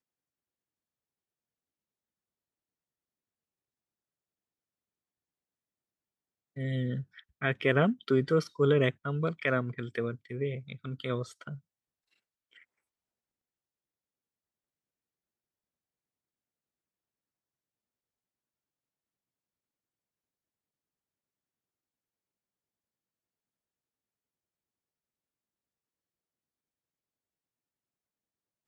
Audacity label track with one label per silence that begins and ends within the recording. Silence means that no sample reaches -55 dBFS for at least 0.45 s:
11.590000	12.530000	silence